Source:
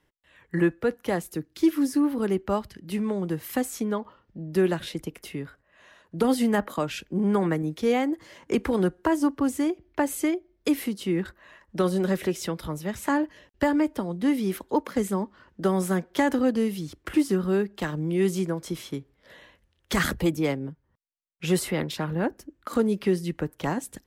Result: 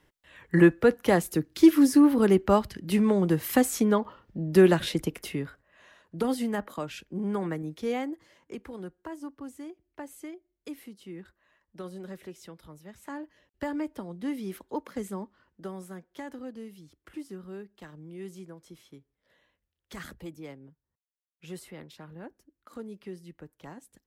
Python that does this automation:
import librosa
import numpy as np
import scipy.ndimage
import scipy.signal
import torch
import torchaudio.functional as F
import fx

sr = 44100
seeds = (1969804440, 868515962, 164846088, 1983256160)

y = fx.gain(x, sr, db=fx.line((5.05, 4.5), (6.49, -7.0), (8.02, -7.0), (8.6, -16.5), (12.96, -16.5), (13.77, -9.0), (15.24, -9.0), (15.88, -17.5)))